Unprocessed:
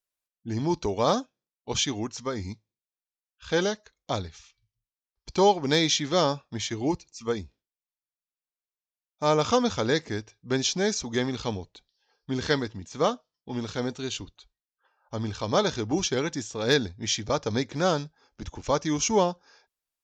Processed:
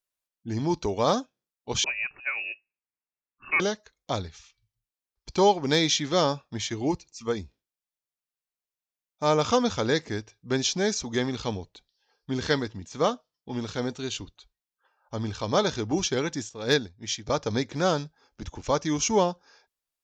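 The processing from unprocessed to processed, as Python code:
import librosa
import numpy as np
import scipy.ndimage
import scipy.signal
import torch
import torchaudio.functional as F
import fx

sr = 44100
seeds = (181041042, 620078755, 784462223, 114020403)

y = fx.freq_invert(x, sr, carrier_hz=2700, at=(1.84, 3.6))
y = fx.upward_expand(y, sr, threshold_db=-40.0, expansion=1.5, at=(16.49, 17.27))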